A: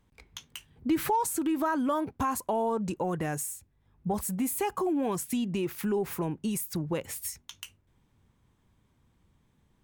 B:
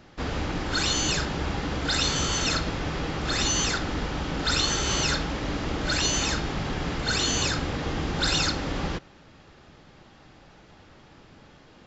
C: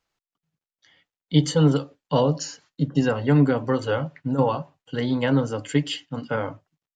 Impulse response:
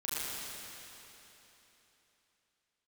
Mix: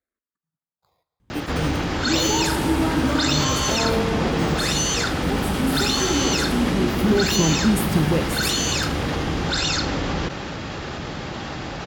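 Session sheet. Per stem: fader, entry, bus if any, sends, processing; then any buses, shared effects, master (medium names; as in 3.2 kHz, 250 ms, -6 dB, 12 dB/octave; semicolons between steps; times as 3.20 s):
+2.5 dB, 1.20 s, send -10 dB, bass shelf 370 Hz +10.5 dB; auto duck -11 dB, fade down 1.55 s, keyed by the third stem
+1.0 dB, 1.30 s, no send, level flattener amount 70%
-8.5 dB, 0.00 s, send -16.5 dB, sample-rate reducer 2.9 kHz, jitter 0%; barber-pole phaser -0.77 Hz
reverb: on, RT60 3.5 s, pre-delay 31 ms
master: high-pass 44 Hz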